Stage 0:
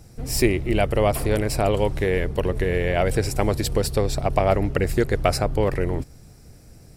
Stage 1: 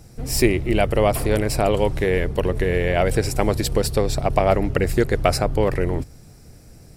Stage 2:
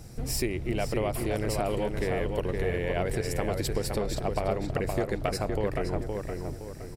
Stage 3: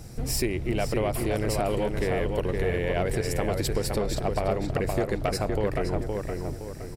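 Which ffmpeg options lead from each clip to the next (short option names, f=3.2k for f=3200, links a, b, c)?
-af "bandreject=f=50:t=h:w=6,bandreject=f=100:t=h:w=6,volume=2dB"
-filter_complex "[0:a]acompressor=threshold=-30dB:ratio=3,asplit=2[a][b];[b]adelay=517,lowpass=f=2.9k:p=1,volume=-4dB,asplit=2[c][d];[d]adelay=517,lowpass=f=2.9k:p=1,volume=0.42,asplit=2[e][f];[f]adelay=517,lowpass=f=2.9k:p=1,volume=0.42,asplit=2[g][h];[h]adelay=517,lowpass=f=2.9k:p=1,volume=0.42,asplit=2[i][j];[j]adelay=517,lowpass=f=2.9k:p=1,volume=0.42[k];[a][c][e][g][i][k]amix=inputs=6:normalize=0"
-af "asoftclip=type=tanh:threshold=-16.5dB,volume=3dB"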